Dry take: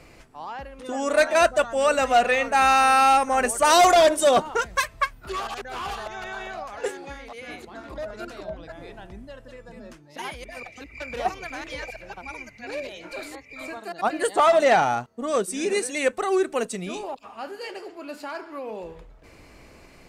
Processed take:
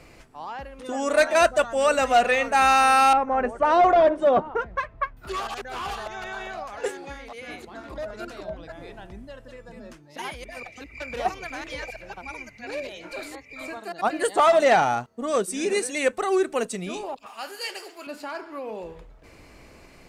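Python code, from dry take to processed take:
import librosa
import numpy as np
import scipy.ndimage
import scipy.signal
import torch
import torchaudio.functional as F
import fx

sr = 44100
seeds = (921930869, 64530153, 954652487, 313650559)

y = fx.bessel_lowpass(x, sr, hz=1200.0, order=2, at=(3.13, 5.17))
y = fx.tilt_eq(y, sr, slope=4.0, at=(17.26, 18.07))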